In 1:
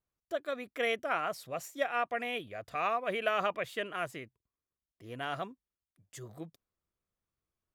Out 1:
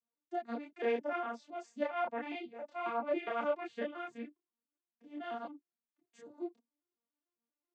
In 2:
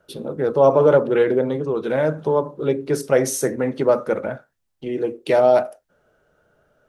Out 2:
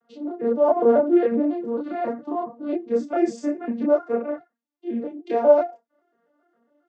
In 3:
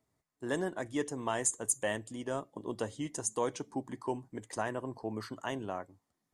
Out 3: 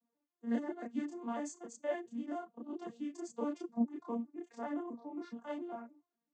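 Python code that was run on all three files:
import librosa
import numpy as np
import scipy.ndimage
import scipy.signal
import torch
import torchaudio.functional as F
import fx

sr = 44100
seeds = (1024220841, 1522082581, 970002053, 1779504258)

y = fx.vocoder_arp(x, sr, chord='major triad', root=58, every_ms=136)
y = fx.chorus_voices(y, sr, voices=6, hz=0.64, base_ms=30, depth_ms=4.4, mix_pct=50)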